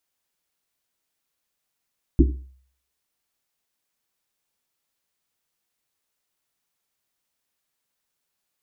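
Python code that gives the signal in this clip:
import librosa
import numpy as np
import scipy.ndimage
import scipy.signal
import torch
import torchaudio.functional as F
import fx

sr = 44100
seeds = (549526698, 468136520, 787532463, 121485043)

y = fx.risset_drum(sr, seeds[0], length_s=1.1, hz=65.0, decay_s=0.55, noise_hz=300.0, noise_width_hz=140.0, noise_pct=35)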